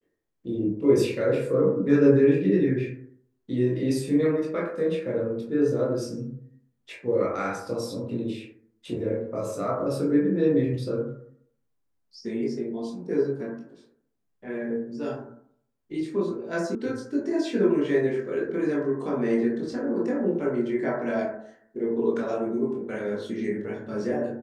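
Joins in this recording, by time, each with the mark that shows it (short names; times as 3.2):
16.75 sound cut off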